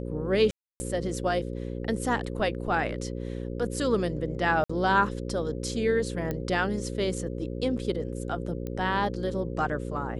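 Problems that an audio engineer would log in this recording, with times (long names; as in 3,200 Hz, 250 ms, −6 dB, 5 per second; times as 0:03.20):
mains buzz 60 Hz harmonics 9 −34 dBFS
0:00.51–0:00.80: drop-out 290 ms
0:04.64–0:04.70: drop-out 55 ms
0:06.31: click −18 dBFS
0:08.67: click −22 dBFS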